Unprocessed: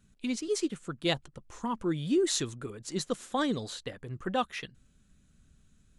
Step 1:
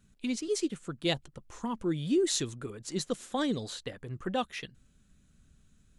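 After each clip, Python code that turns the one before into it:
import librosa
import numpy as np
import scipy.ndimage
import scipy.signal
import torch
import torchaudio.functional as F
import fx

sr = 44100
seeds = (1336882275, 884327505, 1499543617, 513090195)

y = fx.dynamic_eq(x, sr, hz=1200.0, q=1.2, threshold_db=-45.0, ratio=4.0, max_db=-5)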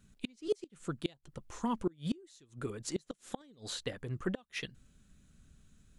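y = fx.gate_flip(x, sr, shuts_db=-22.0, range_db=-30)
y = F.gain(torch.from_numpy(y), 1.0).numpy()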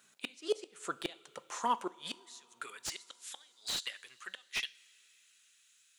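y = fx.filter_sweep_highpass(x, sr, from_hz=690.0, to_hz=2500.0, start_s=1.72, end_s=3.15, q=0.8)
y = fx.rev_double_slope(y, sr, seeds[0], early_s=0.44, late_s=4.4, knee_db=-18, drr_db=15.5)
y = fx.slew_limit(y, sr, full_power_hz=44.0)
y = F.gain(torch.from_numpy(y), 7.5).numpy()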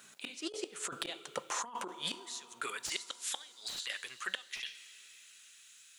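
y = fx.over_compress(x, sr, threshold_db=-43.0, ratio=-1.0)
y = F.gain(torch.from_numpy(y), 4.0).numpy()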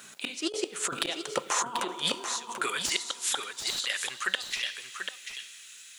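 y = x + 10.0 ** (-7.5 / 20.0) * np.pad(x, (int(738 * sr / 1000.0), 0))[:len(x)]
y = F.gain(torch.from_numpy(y), 8.5).numpy()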